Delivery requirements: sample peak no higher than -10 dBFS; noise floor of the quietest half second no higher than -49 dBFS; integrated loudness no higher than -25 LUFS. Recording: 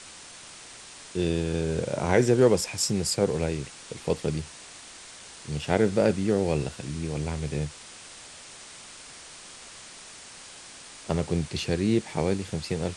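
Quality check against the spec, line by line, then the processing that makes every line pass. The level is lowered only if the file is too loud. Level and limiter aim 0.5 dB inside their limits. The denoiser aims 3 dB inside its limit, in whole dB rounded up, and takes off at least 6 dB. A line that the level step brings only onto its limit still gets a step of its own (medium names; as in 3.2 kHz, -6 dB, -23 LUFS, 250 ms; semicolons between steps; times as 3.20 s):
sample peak -7.5 dBFS: fail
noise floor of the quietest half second -46 dBFS: fail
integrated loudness -27.0 LUFS: pass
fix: noise reduction 6 dB, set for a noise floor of -46 dBFS; peak limiter -10.5 dBFS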